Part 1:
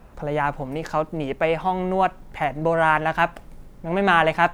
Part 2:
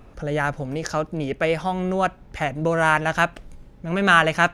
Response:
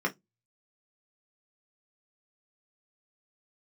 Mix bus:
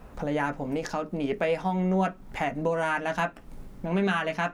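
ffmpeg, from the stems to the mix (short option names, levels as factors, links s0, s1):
-filter_complex "[0:a]acompressor=threshold=0.0316:ratio=6,volume=1,asplit=2[s0][s1];[1:a]highpass=150,volume=0.422,asplit=2[s2][s3];[s3]volume=0.355[s4];[s1]apad=whole_len=200202[s5];[s2][s5]sidechaingate=range=0.0224:threshold=0.0112:ratio=16:detection=peak[s6];[2:a]atrim=start_sample=2205[s7];[s4][s7]afir=irnorm=-1:irlink=0[s8];[s0][s6][s8]amix=inputs=3:normalize=0,alimiter=limit=0.168:level=0:latency=1:release=300"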